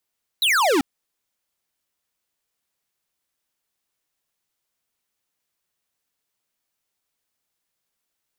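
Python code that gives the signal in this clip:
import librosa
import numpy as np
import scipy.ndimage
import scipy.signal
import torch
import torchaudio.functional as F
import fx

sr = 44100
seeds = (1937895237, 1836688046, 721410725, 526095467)

y = fx.laser_zap(sr, level_db=-18, start_hz=4100.0, end_hz=250.0, length_s=0.39, wave='square')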